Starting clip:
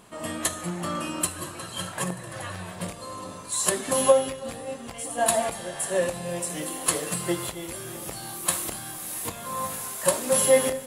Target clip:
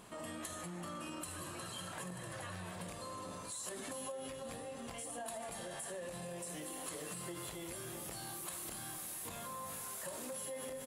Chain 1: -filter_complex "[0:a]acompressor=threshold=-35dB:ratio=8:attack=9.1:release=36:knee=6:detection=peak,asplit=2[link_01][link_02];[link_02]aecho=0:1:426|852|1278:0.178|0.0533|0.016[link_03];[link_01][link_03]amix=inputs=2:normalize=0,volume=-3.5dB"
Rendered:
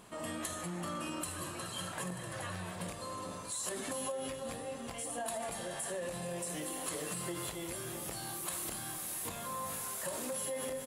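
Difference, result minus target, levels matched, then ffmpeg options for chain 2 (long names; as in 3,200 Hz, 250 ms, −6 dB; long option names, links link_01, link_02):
downward compressor: peak gain reduction −5.5 dB
-filter_complex "[0:a]acompressor=threshold=-41.5dB:ratio=8:attack=9.1:release=36:knee=6:detection=peak,asplit=2[link_01][link_02];[link_02]aecho=0:1:426|852|1278:0.178|0.0533|0.016[link_03];[link_01][link_03]amix=inputs=2:normalize=0,volume=-3.5dB"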